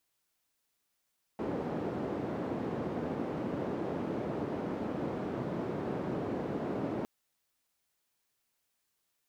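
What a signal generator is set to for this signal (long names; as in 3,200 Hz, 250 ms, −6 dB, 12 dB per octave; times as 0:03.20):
band-limited noise 160–400 Hz, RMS −35.5 dBFS 5.66 s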